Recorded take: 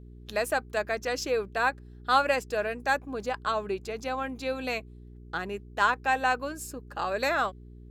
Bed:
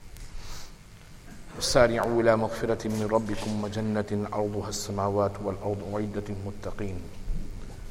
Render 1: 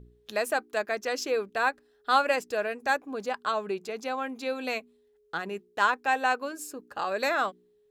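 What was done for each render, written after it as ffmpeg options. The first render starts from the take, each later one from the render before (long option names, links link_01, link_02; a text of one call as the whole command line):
ffmpeg -i in.wav -af "bandreject=frequency=60:width_type=h:width=4,bandreject=frequency=120:width_type=h:width=4,bandreject=frequency=180:width_type=h:width=4,bandreject=frequency=240:width_type=h:width=4,bandreject=frequency=300:width_type=h:width=4,bandreject=frequency=360:width_type=h:width=4" out.wav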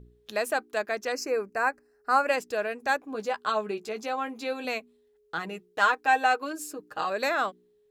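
ffmpeg -i in.wav -filter_complex "[0:a]asettb=1/sr,asplit=3[link_01][link_02][link_03];[link_01]atrim=end=1.124[link_04];[link_02]atrim=start=1.12:end=2.27,asetpts=PTS-STARTPTS,afade=type=in:duration=0.004:curve=qsin,afade=type=out:start_time=1.146:duration=0.004:curve=qsin,asuperstop=centerf=3400:order=4:qfactor=1.5[link_05];[link_03]atrim=start=2.266[link_06];[link_04][link_05]acrossfade=duration=0.004:curve1=hsin:curve2=qsin[link_07];[link_07][link_06]acrossfade=duration=0.004:curve1=qsin:curve2=hsin,asettb=1/sr,asplit=3[link_08][link_09][link_10];[link_08]atrim=end=3.134[link_11];[link_09]atrim=start=3.13:end=4.65,asetpts=PTS-STARTPTS,afade=type=in:duration=0.004:curve=qsin,afade=type=out:start_time=1.516:duration=0.004:curve=qsin,asplit=2[link_12][link_13];[link_13]adelay=14,volume=-7dB[link_14];[link_12][link_14]amix=inputs=2:normalize=0,atrim=end_sample=67032[link_15];[link_10]atrim=start=4.646[link_16];[link_11][link_15]acrossfade=duration=0.004:curve1=hsin:curve2=qsin[link_17];[link_17][link_16]acrossfade=duration=0.004:curve1=qsin:curve2=hsin,asettb=1/sr,asplit=3[link_18][link_19][link_20];[link_18]atrim=end=5.374[link_21];[link_19]atrim=start=5.37:end=7.1,asetpts=PTS-STARTPTS,afade=type=in:duration=0.004:curve=qsin,afade=type=out:start_time=1.726:duration=0.004:curve=qsin,aecho=1:1:6.4:0.66,atrim=end_sample=76293[link_22];[link_20]atrim=start=7.096[link_23];[link_21][link_22]acrossfade=duration=0.004:curve1=hsin:curve2=qsin[link_24];[link_24][link_23]acrossfade=duration=0.004:curve1=qsin:curve2=hsin" out.wav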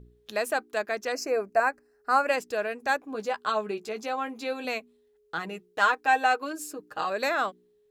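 ffmpeg -i in.wav -filter_complex "[0:a]asettb=1/sr,asplit=3[link_01][link_02][link_03];[link_01]atrim=end=1.154[link_04];[link_02]atrim=start=1.15:end=1.6,asetpts=PTS-STARTPTS,afade=type=in:duration=0.004:curve=qsin,afade=type=out:start_time=0.446:duration=0.004:curve=qsin,equalizer=frequency=670:width=7.4:gain=13.5[link_05];[link_03]atrim=start=1.596[link_06];[link_04][link_05]acrossfade=duration=0.004:curve1=hsin:curve2=qsin[link_07];[link_07][link_06]acrossfade=duration=0.004:curve1=qsin:curve2=hsin" out.wav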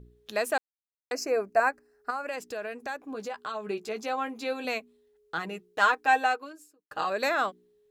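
ffmpeg -i in.wav -filter_complex "[0:a]asettb=1/sr,asplit=3[link_01][link_02][link_03];[link_01]atrim=end=2.104[link_04];[link_02]atrim=start=2.1:end=3.67,asetpts=PTS-STARTPTS,afade=type=in:duration=0.004:curve=qsin,afade=type=out:start_time=1.566:duration=0.004:curve=qsin,acompressor=threshold=-33dB:ratio=3:attack=3.2:release=140:knee=1:detection=peak[link_05];[link_03]atrim=start=3.666[link_06];[link_04][link_05]acrossfade=duration=0.004:curve1=hsin:curve2=qsin[link_07];[link_07][link_06]acrossfade=duration=0.004:curve1=qsin:curve2=hsin,asplit=4[link_08][link_09][link_10][link_11];[link_08]atrim=end=0.58,asetpts=PTS-STARTPTS,afade=type=out:start_time=0.576:duration=0.004:curve=hsin[link_12];[link_09]atrim=start=0.58:end=1.11,asetpts=PTS-STARTPTS,volume=0[link_13];[link_10]atrim=start=1.11:end=6.91,asetpts=PTS-STARTPTS,afade=type=in:duration=0.004:curve=hsin,afade=type=out:start_time=5.07:duration=0.73:curve=qua[link_14];[link_11]atrim=start=6.91,asetpts=PTS-STARTPTS,afade=type=in:duration=0.004:curve=hsin[link_15];[link_12][link_13][link_14][link_15]concat=n=4:v=0:a=1" out.wav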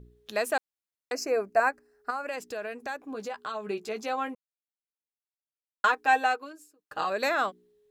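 ffmpeg -i in.wav -filter_complex "[0:a]asplit=3[link_01][link_02][link_03];[link_01]atrim=end=4.35,asetpts=PTS-STARTPTS,afade=type=out:start_time=4.346:duration=0.004:curve=hsin[link_04];[link_02]atrim=start=4.35:end=5.84,asetpts=PTS-STARTPTS,volume=0[link_05];[link_03]atrim=start=5.84,asetpts=PTS-STARTPTS,afade=type=in:duration=0.004:curve=hsin[link_06];[link_04][link_05][link_06]concat=n=3:v=0:a=1" out.wav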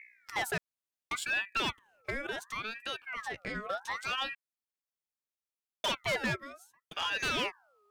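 ffmpeg -i in.wav -af "asoftclip=type=hard:threshold=-25.5dB,aeval=exprs='val(0)*sin(2*PI*1500*n/s+1500*0.45/0.7*sin(2*PI*0.7*n/s))':channel_layout=same" out.wav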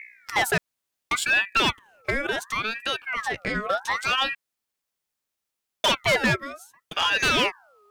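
ffmpeg -i in.wav -af "volume=10.5dB" out.wav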